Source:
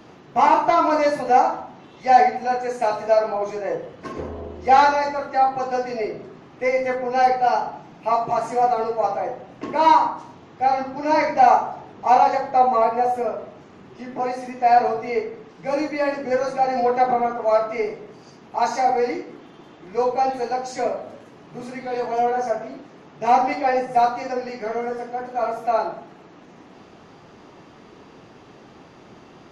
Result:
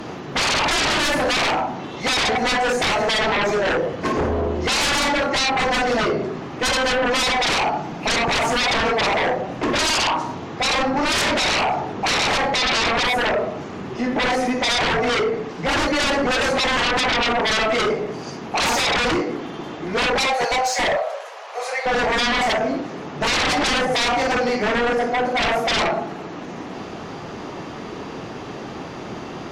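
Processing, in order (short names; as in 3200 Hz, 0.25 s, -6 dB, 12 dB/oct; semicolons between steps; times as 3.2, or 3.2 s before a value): 0.98–1.53 half-wave gain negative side -3 dB; 20.25–21.86 steep high-pass 520 Hz 48 dB/oct; limiter -12.5 dBFS, peak gain reduction 10 dB; sine folder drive 14 dB, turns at -12.5 dBFS; gain -4 dB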